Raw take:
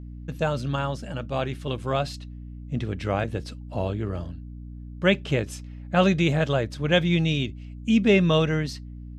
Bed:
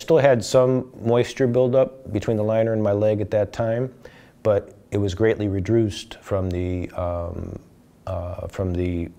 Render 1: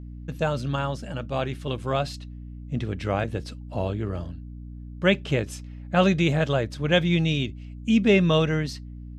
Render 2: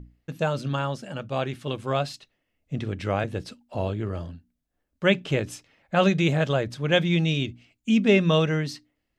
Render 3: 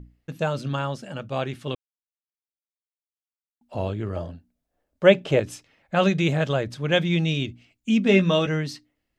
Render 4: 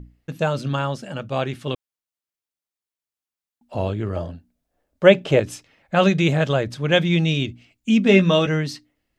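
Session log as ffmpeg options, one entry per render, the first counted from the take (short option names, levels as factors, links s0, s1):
-af anull
-af "bandreject=f=60:t=h:w=6,bandreject=f=120:t=h:w=6,bandreject=f=180:t=h:w=6,bandreject=f=240:t=h:w=6,bandreject=f=300:t=h:w=6"
-filter_complex "[0:a]asettb=1/sr,asplit=3[s0][s1][s2];[s0]atrim=end=4.164[s3];[s1]atrim=start=4.16:end=5.4,asetpts=PTS-STARTPTS,afade=t=in:d=0.004:c=qsin,afade=t=out:st=1.236:d=0.004:c=qsin,equalizer=f=610:w=1.2:g=9.5[s4];[s2]atrim=start=5.396[s5];[s3][s4]acrossfade=d=0.004:c1=hsin:c2=qsin[s6];[s6][s5]acrossfade=d=0.004:c1=qsin:c2=hsin,asettb=1/sr,asplit=3[s7][s8][s9];[s7]atrim=end=8.044[s10];[s8]atrim=start=8.04:end=8.47,asetpts=PTS-STARTPTS,afade=t=in:d=0.004:c=qsin,afade=t=out:st=0.426:d=0.004:c=qsin,asplit=2[s11][s12];[s12]adelay=16,volume=0.473[s13];[s11][s13]amix=inputs=2:normalize=0,atrim=end_sample=18963[s14];[s9]atrim=start=8.466[s15];[s10][s14]acrossfade=d=0.004:c1=hsin:c2=qsin[s16];[s16][s15]acrossfade=d=0.004:c1=qsin:c2=hsin,asplit=3[s17][s18][s19];[s17]atrim=end=1.75,asetpts=PTS-STARTPTS,afade=t=out:st=1.746:d=0.004:c=hsin[s20];[s18]atrim=start=1.75:end=3.61,asetpts=PTS-STARTPTS,volume=0[s21];[s19]atrim=start=3.61,asetpts=PTS-STARTPTS,afade=t=in:d=0.004:c=hsin[s22];[s20][s21][s22]concat=n=3:v=0:a=1"
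-af "volume=1.5,alimiter=limit=0.891:level=0:latency=1"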